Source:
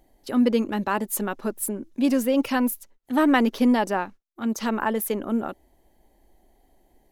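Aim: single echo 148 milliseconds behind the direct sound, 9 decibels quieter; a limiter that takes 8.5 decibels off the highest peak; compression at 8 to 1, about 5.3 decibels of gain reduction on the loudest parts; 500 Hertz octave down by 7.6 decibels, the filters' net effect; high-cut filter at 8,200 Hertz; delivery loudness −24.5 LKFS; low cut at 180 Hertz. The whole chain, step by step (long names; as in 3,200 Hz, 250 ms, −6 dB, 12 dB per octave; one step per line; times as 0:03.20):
high-pass filter 180 Hz
low-pass filter 8,200 Hz
parametric band 500 Hz −9 dB
downward compressor 8 to 1, threshold −24 dBFS
brickwall limiter −23.5 dBFS
single-tap delay 148 ms −9 dB
level +8.5 dB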